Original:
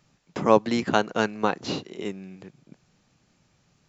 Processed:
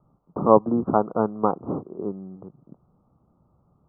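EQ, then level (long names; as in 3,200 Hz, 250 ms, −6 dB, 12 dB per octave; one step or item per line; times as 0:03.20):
Butterworth low-pass 1,300 Hz 96 dB per octave
parametric band 69 Hz +7 dB 0.37 octaves
+2.5 dB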